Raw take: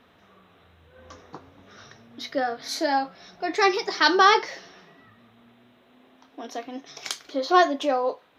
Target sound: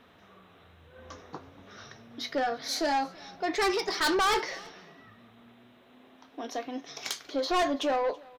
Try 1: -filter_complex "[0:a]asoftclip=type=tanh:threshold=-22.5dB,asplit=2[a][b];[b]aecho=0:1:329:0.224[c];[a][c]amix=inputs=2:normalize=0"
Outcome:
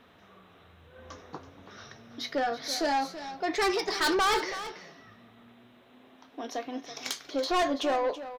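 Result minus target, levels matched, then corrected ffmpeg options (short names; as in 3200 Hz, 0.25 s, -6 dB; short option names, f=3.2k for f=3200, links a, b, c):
echo-to-direct +11.5 dB
-filter_complex "[0:a]asoftclip=type=tanh:threshold=-22.5dB,asplit=2[a][b];[b]aecho=0:1:329:0.0596[c];[a][c]amix=inputs=2:normalize=0"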